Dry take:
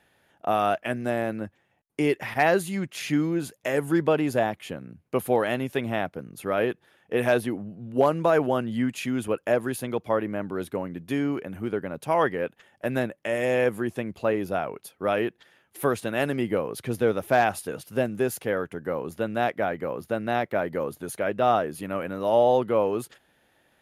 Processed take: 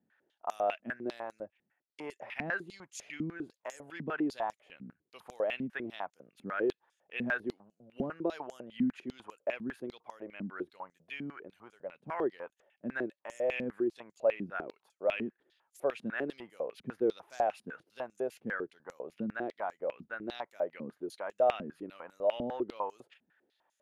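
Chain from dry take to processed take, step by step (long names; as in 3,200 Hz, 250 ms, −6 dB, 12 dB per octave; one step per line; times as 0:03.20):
0:10.62–0:11.95: parametric band 290 Hz −6.5 dB 1.1 octaves
band-pass on a step sequencer 10 Hz 220–6,800 Hz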